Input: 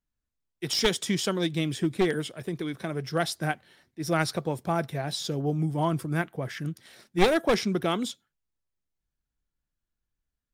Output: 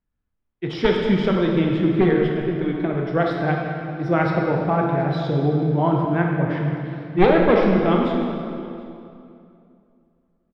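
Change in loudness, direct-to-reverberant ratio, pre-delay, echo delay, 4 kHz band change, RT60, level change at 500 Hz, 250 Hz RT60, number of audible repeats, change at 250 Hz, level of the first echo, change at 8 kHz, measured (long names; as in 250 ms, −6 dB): +8.0 dB, −0.5 dB, 18 ms, 723 ms, −3.5 dB, 2.7 s, +9.0 dB, 2.8 s, 1, +9.5 dB, −23.0 dB, below −20 dB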